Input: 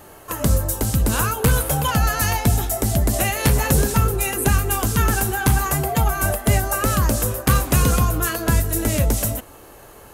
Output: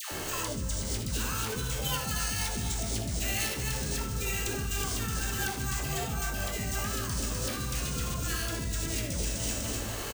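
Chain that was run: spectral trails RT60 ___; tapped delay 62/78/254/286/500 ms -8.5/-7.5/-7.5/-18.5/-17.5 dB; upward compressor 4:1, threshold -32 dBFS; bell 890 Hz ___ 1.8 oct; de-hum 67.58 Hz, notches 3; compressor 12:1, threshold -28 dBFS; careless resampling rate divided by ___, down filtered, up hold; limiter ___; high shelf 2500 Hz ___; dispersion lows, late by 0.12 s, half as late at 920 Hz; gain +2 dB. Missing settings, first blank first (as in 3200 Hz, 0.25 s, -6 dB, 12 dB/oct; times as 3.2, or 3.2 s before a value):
0.45 s, -5.5 dB, 3×, -28 dBFS, +11.5 dB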